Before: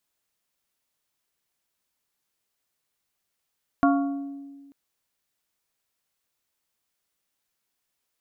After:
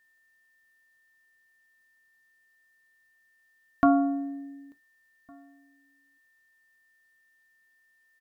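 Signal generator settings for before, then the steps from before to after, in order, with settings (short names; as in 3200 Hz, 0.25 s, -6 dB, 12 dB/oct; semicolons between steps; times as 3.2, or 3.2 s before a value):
glass hit plate, lowest mode 279 Hz, modes 4, decay 1.66 s, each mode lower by 3 dB, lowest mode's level -16.5 dB
whine 1800 Hz -65 dBFS; outdoor echo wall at 250 m, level -30 dB; non-linear reverb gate 90 ms falling, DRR 11.5 dB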